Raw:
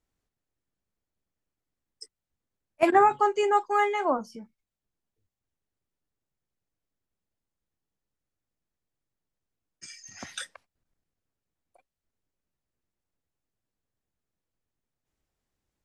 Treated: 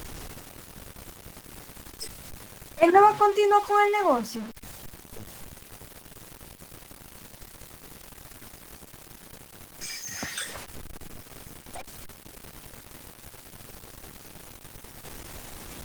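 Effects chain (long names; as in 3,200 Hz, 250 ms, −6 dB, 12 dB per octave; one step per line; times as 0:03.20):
converter with a step at zero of −34 dBFS
level +2.5 dB
Opus 20 kbit/s 48,000 Hz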